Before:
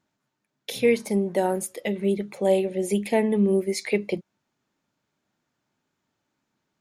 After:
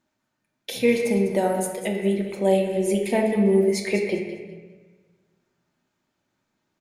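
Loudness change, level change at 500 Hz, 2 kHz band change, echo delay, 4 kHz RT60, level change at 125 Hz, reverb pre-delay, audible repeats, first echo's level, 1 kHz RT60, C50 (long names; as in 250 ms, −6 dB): +2.0 dB, +2.0 dB, +2.5 dB, 200 ms, 1.0 s, +2.5 dB, 3 ms, 2, −12.0 dB, 1.2 s, 4.5 dB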